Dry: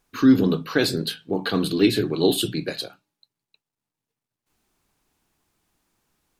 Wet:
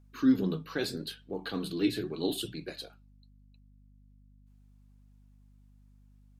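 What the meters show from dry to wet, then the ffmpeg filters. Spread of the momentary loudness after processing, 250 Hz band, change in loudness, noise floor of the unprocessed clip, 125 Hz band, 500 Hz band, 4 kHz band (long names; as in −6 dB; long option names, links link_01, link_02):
15 LU, −9.5 dB, −10.5 dB, below −85 dBFS, −11.5 dB, −12.0 dB, −11.5 dB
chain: -af "flanger=delay=1.3:depth=5.6:regen=62:speed=0.79:shape=triangular,aeval=exprs='val(0)+0.00316*(sin(2*PI*50*n/s)+sin(2*PI*2*50*n/s)/2+sin(2*PI*3*50*n/s)/3+sin(2*PI*4*50*n/s)/4+sin(2*PI*5*50*n/s)/5)':channel_layout=same,volume=-7.5dB"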